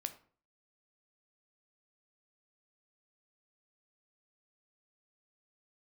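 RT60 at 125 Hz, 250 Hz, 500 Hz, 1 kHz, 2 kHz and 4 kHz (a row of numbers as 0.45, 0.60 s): 0.55, 0.50, 0.45, 0.45, 0.40, 0.30 s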